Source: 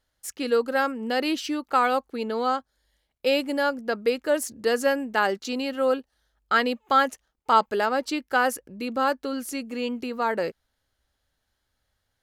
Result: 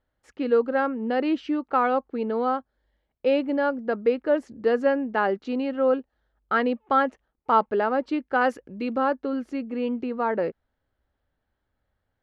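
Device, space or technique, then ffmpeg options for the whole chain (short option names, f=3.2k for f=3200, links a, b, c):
phone in a pocket: -filter_complex "[0:a]asettb=1/sr,asplit=3[a][b][c];[a]atrim=end=8.414[d];[b]atrim=start=8.41:end=8.98,asetpts=PTS-STARTPTS,afade=t=in:d=0.004:c=qsin,afade=t=out:st=0.566:d=0.004:c=qsin,highshelf=f=2.4k:g=9.5[e];[c]atrim=start=8.976[f];[d][e]acrossfade=d=0.004:c1=hsin:c2=qsin[g];[g][f]acrossfade=d=0.004:c1=qsin:c2=hsin,lowpass=3.1k,equalizer=f=280:t=o:w=2.3:g=3,highshelf=f=2.5k:g=-10.5"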